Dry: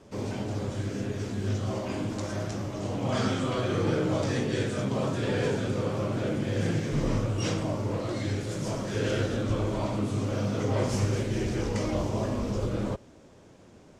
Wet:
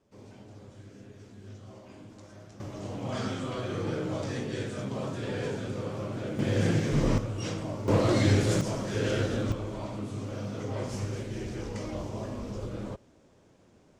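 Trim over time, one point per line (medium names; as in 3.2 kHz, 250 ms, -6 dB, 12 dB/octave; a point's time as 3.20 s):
-17 dB
from 2.60 s -5.5 dB
from 6.39 s +2 dB
from 7.18 s -5 dB
from 7.88 s +7.5 dB
from 8.61 s -0.5 dB
from 9.52 s -7 dB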